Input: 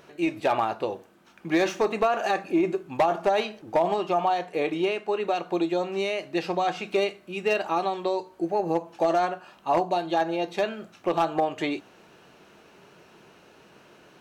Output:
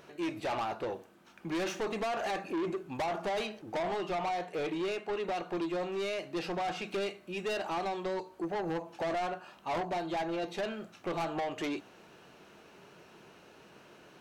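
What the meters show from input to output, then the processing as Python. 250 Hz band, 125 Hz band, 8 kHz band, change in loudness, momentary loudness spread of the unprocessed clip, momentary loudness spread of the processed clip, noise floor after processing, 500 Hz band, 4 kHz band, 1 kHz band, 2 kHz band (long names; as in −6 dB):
−8.0 dB, −5.5 dB, can't be measured, −9.0 dB, 6 LU, 4 LU, −58 dBFS, −9.0 dB, −6.0 dB, −9.5 dB, −7.0 dB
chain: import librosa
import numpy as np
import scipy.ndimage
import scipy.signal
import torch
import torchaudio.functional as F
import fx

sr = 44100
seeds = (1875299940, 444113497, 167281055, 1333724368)

y = 10.0 ** (-27.5 / 20.0) * np.tanh(x / 10.0 ** (-27.5 / 20.0))
y = F.gain(torch.from_numpy(y), -2.5).numpy()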